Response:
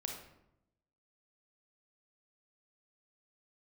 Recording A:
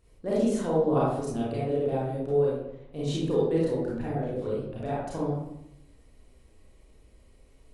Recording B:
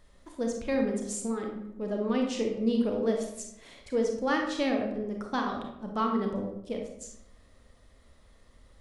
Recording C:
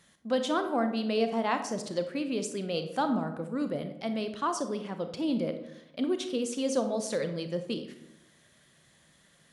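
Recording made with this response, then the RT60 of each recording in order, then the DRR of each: B; 0.80 s, 0.85 s, 0.85 s; -7.5 dB, 1.5 dB, 7.5 dB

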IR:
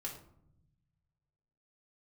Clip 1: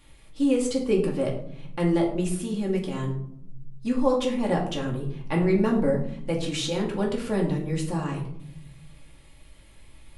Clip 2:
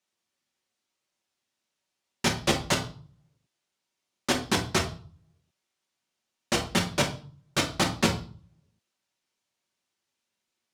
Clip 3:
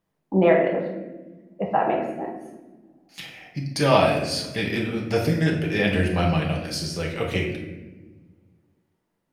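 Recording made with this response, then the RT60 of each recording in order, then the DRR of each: 1; 0.75 s, 0.45 s, 1.2 s; -2.0 dB, 0.0 dB, -1.5 dB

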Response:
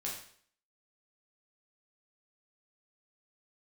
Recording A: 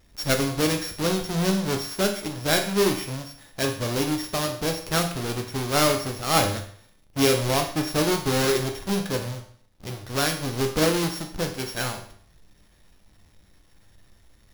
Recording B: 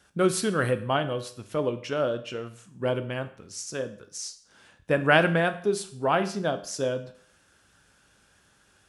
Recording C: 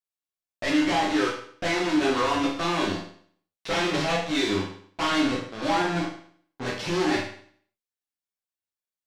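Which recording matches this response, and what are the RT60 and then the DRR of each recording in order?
C; 0.55 s, 0.55 s, 0.55 s; 3.5 dB, 9.5 dB, -4.0 dB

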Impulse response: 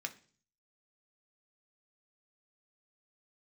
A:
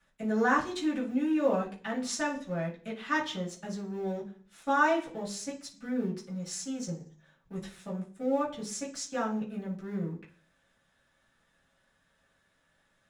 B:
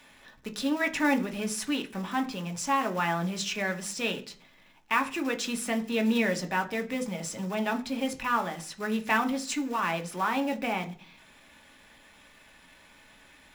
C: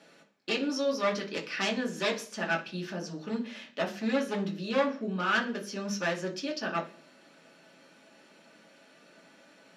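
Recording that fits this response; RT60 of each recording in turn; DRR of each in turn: B; 0.45 s, 0.45 s, 0.45 s; -9.0 dB, 4.5 dB, -1.5 dB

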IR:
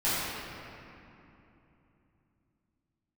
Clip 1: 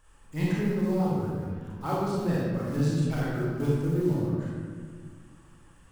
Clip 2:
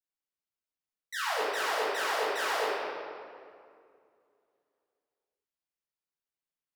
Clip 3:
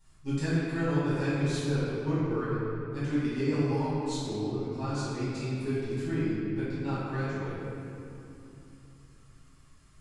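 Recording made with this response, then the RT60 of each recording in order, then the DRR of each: 3; 1.7 s, 2.3 s, 3.0 s; -7.0 dB, -10.0 dB, -13.0 dB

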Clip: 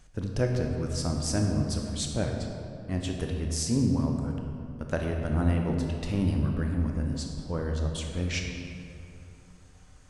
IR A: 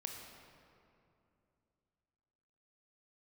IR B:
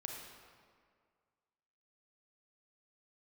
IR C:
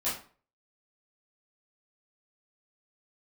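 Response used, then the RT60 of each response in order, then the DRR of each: A; 2.7 s, 2.0 s, 0.40 s; 1.5 dB, 0.5 dB, -11.0 dB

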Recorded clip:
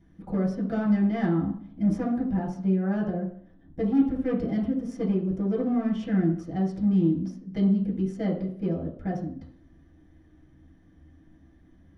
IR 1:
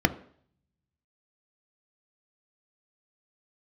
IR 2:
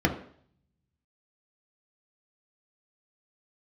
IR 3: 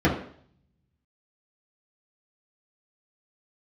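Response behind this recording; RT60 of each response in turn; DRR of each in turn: 3; 0.60 s, 0.60 s, 0.60 s; 9.0 dB, 1.0 dB, -7.0 dB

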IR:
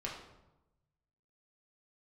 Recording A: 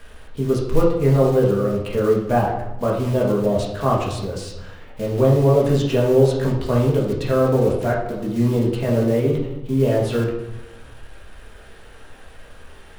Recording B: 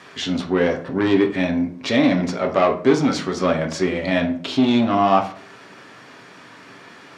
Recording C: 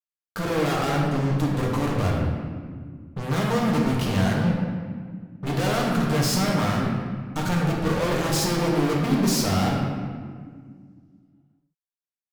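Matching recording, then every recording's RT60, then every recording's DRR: A; 0.95 s, 0.55 s, 1.9 s; -4.0 dB, 2.5 dB, -2.5 dB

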